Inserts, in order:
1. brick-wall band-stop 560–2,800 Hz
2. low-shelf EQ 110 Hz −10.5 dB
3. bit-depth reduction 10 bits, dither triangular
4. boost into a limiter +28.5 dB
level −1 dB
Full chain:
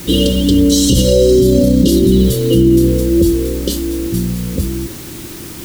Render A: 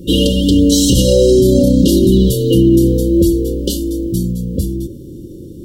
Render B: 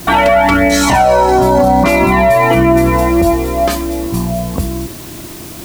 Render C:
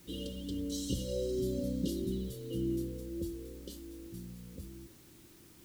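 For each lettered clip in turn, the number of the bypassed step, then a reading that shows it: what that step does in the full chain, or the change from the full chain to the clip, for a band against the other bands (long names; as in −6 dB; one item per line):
3, distortion level −23 dB
1, 500 Hz band +5.0 dB
4, change in crest factor +6.0 dB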